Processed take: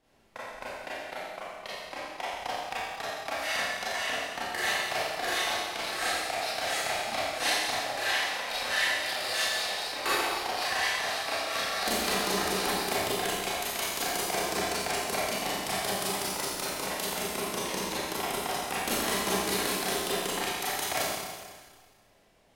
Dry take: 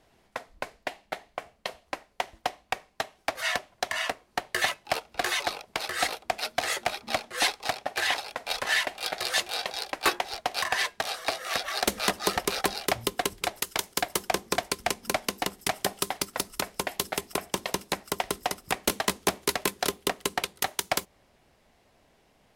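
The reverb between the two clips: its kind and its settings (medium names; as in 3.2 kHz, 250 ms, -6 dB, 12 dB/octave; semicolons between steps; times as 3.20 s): Schroeder reverb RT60 1.6 s, combs from 28 ms, DRR -9.5 dB; trim -10 dB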